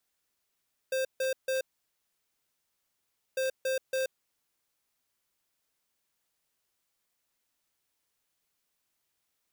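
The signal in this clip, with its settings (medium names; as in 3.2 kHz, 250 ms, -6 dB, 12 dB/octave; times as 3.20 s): beep pattern square 525 Hz, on 0.13 s, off 0.15 s, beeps 3, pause 1.76 s, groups 2, -29.5 dBFS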